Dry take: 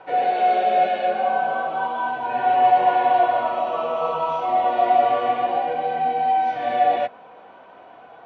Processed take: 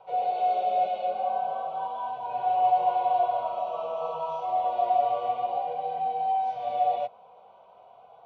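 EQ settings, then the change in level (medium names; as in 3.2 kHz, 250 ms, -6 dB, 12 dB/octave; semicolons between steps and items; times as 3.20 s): static phaser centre 710 Hz, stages 4; -6.5 dB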